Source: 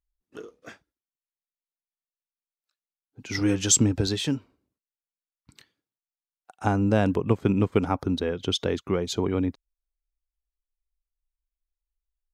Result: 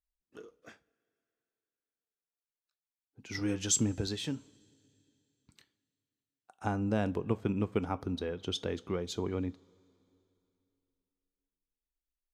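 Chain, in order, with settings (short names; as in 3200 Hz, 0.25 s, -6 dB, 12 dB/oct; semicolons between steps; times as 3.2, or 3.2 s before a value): two-slope reverb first 0.25 s, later 3 s, from -22 dB, DRR 14.5 dB; gain -9 dB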